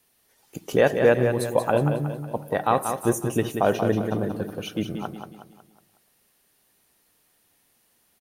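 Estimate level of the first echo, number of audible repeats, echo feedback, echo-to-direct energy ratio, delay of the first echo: -7.0 dB, 4, 44%, -6.0 dB, 0.183 s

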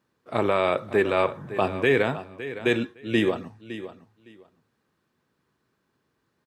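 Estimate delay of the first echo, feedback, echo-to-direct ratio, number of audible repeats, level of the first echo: 0.561 s, 18%, -13.5 dB, 2, -13.5 dB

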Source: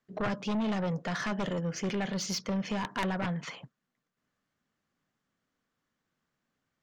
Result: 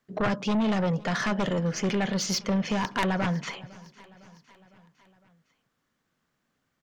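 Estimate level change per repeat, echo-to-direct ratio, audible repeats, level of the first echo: -4.5 dB, -20.0 dB, 3, -22.0 dB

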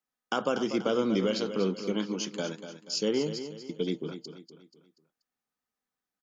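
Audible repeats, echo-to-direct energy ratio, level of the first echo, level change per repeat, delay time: 4, -9.5 dB, -10.5 dB, -7.5 dB, 0.241 s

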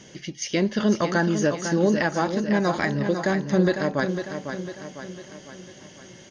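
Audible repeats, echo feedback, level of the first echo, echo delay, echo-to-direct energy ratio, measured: 5, 51%, -8.0 dB, 0.501 s, -6.5 dB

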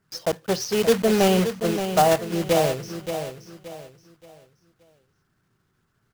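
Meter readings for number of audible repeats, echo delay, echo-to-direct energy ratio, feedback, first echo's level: 3, 0.575 s, -8.5 dB, 32%, -9.0 dB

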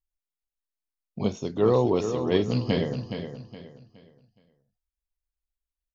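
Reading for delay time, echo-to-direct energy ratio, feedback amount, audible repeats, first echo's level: 0.418 s, -8.0 dB, 32%, 3, -8.5 dB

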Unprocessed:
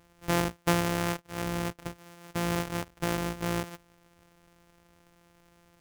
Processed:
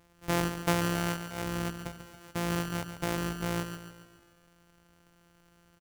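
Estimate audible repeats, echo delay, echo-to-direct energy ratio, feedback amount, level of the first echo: 5, 0.14 s, -8.0 dB, 51%, -9.5 dB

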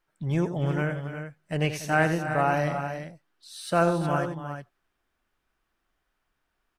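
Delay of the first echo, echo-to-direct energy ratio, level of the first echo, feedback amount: 88 ms, -6.0 dB, -11.0 dB, no steady repeat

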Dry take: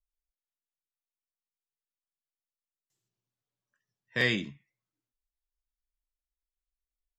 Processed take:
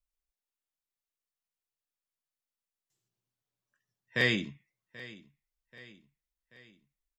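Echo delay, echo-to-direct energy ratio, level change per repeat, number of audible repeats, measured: 0.784 s, -17.5 dB, -5.5 dB, 3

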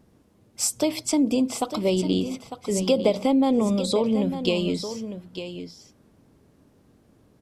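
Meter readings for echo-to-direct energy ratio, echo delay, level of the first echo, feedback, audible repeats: -10.5 dB, 0.901 s, -10.5 dB, no steady repeat, 1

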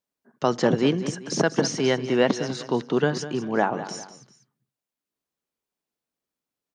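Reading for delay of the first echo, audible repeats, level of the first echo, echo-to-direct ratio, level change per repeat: 0.197 s, 2, -13.0 dB, -12.5 dB, -8.5 dB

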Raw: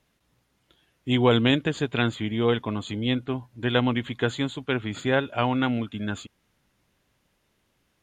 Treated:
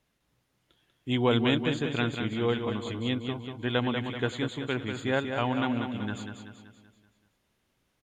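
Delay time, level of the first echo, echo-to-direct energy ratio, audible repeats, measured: 0.191 s, -6.5 dB, -5.5 dB, 5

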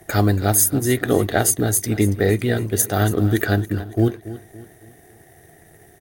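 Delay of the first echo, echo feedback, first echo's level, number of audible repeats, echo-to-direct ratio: 0.281 s, 41%, -15.0 dB, 3, -14.0 dB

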